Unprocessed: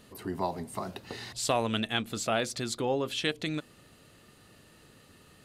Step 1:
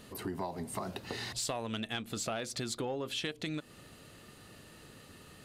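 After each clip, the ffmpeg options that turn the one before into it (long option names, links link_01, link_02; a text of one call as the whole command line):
ffmpeg -i in.wav -af "acompressor=threshold=-36dB:ratio=6,asoftclip=type=tanh:threshold=-26.5dB,volume=3dB" out.wav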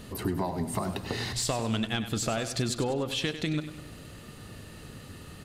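ffmpeg -i in.wav -filter_complex "[0:a]lowshelf=frequency=170:gain=9.5,asplit=2[link_01][link_02];[link_02]aecho=0:1:98|196|294|392|490:0.282|0.135|0.0649|0.0312|0.015[link_03];[link_01][link_03]amix=inputs=2:normalize=0,volume=5dB" out.wav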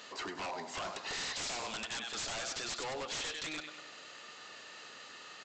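ffmpeg -i in.wav -af "highpass=810,aresample=16000,aeval=exprs='0.0158*(abs(mod(val(0)/0.0158+3,4)-2)-1)':channel_layout=same,aresample=44100,volume=2.5dB" out.wav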